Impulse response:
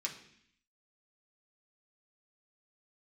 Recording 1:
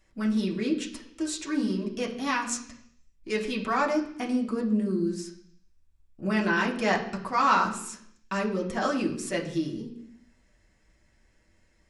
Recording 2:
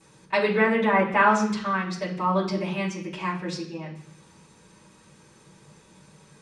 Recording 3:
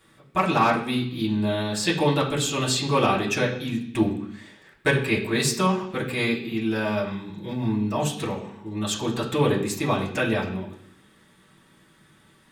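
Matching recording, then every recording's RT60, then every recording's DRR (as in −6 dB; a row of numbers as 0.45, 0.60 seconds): 1; 0.65, 0.65, 0.65 seconds; −2.0, −14.0, −6.5 decibels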